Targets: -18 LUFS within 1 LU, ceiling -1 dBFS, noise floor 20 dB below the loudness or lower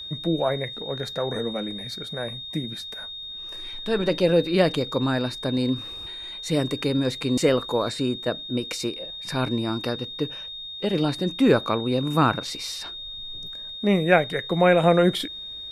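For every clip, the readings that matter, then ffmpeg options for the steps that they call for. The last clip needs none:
steady tone 3700 Hz; tone level -34 dBFS; loudness -25.0 LUFS; peak -4.0 dBFS; loudness target -18.0 LUFS
-> -af "bandreject=f=3.7k:w=30"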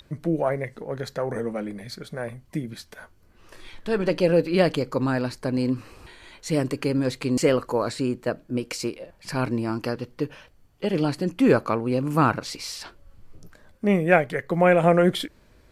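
steady tone none; loudness -24.5 LUFS; peak -4.0 dBFS; loudness target -18.0 LUFS
-> -af "volume=6.5dB,alimiter=limit=-1dB:level=0:latency=1"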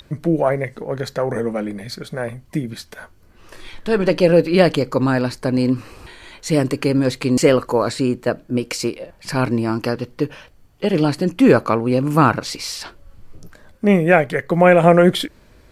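loudness -18.0 LUFS; peak -1.0 dBFS; noise floor -50 dBFS

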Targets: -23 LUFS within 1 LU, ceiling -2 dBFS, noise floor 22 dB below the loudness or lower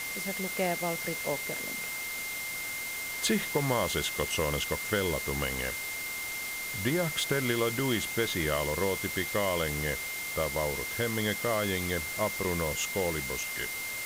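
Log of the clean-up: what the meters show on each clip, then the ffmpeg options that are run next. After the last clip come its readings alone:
steady tone 2100 Hz; tone level -36 dBFS; noise floor -37 dBFS; noise floor target -53 dBFS; loudness -30.5 LUFS; peak -14.0 dBFS; loudness target -23.0 LUFS
-> -af "bandreject=f=2.1k:w=30"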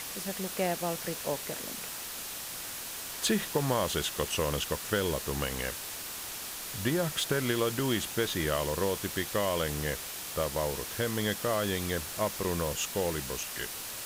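steady tone none; noise floor -40 dBFS; noise floor target -54 dBFS
-> -af "afftdn=nr=14:nf=-40"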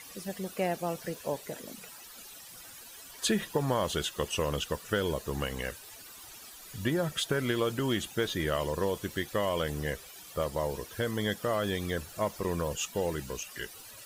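noise floor -49 dBFS; noise floor target -55 dBFS
-> -af "afftdn=nr=6:nf=-49"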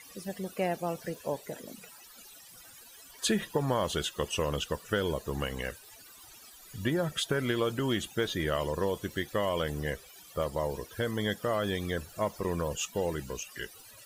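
noise floor -53 dBFS; noise floor target -55 dBFS
-> -af "afftdn=nr=6:nf=-53"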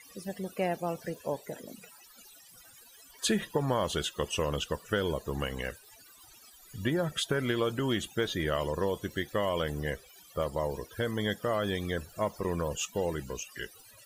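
noise floor -56 dBFS; loudness -32.5 LUFS; peak -15.0 dBFS; loudness target -23.0 LUFS
-> -af "volume=9.5dB"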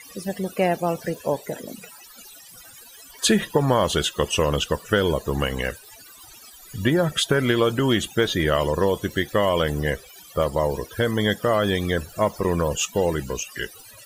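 loudness -23.0 LUFS; peak -5.5 dBFS; noise floor -46 dBFS

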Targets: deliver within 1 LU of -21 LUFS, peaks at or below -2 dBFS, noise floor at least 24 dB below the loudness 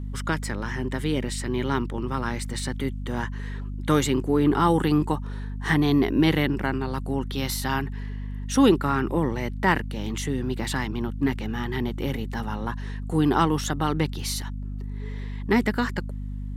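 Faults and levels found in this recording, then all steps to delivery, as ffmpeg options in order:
hum 50 Hz; harmonics up to 250 Hz; hum level -29 dBFS; loudness -26.0 LUFS; peak -5.0 dBFS; loudness target -21.0 LUFS
-> -af "bandreject=f=50:t=h:w=6,bandreject=f=100:t=h:w=6,bandreject=f=150:t=h:w=6,bandreject=f=200:t=h:w=6,bandreject=f=250:t=h:w=6"
-af "volume=5dB,alimiter=limit=-2dB:level=0:latency=1"

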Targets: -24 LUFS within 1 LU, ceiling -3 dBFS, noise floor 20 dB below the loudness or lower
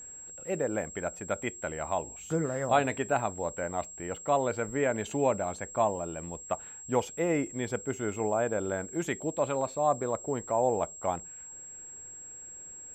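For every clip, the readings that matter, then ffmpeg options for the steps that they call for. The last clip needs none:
steady tone 7600 Hz; tone level -43 dBFS; loudness -31.0 LUFS; peak -10.5 dBFS; loudness target -24.0 LUFS
-> -af "bandreject=f=7.6k:w=30"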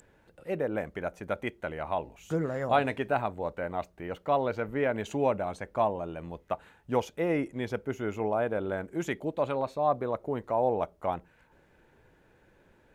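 steady tone none; loudness -31.5 LUFS; peak -11.0 dBFS; loudness target -24.0 LUFS
-> -af "volume=7.5dB"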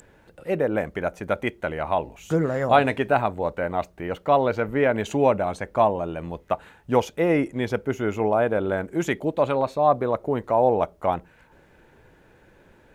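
loudness -24.0 LUFS; peak -3.5 dBFS; noise floor -56 dBFS

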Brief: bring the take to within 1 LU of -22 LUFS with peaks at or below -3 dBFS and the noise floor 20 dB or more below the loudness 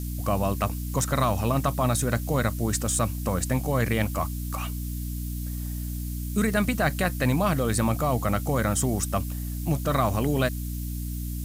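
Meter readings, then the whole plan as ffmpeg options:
hum 60 Hz; harmonics up to 300 Hz; hum level -29 dBFS; noise floor -32 dBFS; noise floor target -47 dBFS; loudness -26.5 LUFS; peak -10.0 dBFS; loudness target -22.0 LUFS
-> -af "bandreject=f=60:t=h:w=4,bandreject=f=120:t=h:w=4,bandreject=f=180:t=h:w=4,bandreject=f=240:t=h:w=4,bandreject=f=300:t=h:w=4"
-af "afftdn=nr=15:nf=-32"
-af "volume=4.5dB"

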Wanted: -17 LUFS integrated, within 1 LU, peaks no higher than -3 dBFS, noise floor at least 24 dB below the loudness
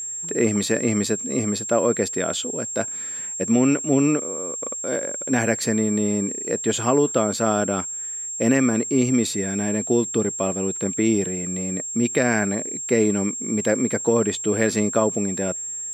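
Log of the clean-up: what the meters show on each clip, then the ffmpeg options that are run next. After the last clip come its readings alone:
steady tone 7500 Hz; tone level -28 dBFS; loudness -22.0 LUFS; peak -5.5 dBFS; loudness target -17.0 LUFS
-> -af "bandreject=f=7.5k:w=30"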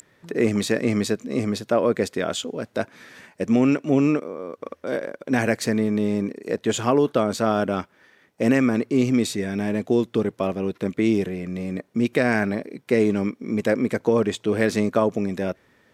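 steady tone none; loudness -23.0 LUFS; peak -6.0 dBFS; loudness target -17.0 LUFS
-> -af "volume=6dB,alimiter=limit=-3dB:level=0:latency=1"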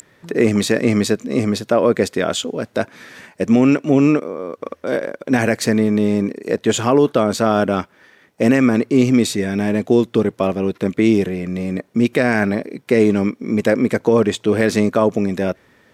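loudness -17.5 LUFS; peak -3.0 dBFS; noise floor -55 dBFS

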